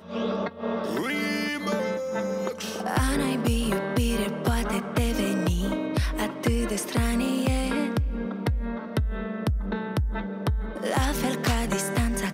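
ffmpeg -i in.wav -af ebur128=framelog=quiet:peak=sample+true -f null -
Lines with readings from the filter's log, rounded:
Integrated loudness:
  I:         -27.2 LUFS
  Threshold: -37.2 LUFS
Loudness range:
  LRA:         2.4 LU
  Threshold: -47.1 LUFS
  LRA low:   -28.6 LUFS
  LRA high:  -26.2 LUFS
Sample peak:
  Peak:      -13.0 dBFS
True peak:
  Peak:      -13.0 dBFS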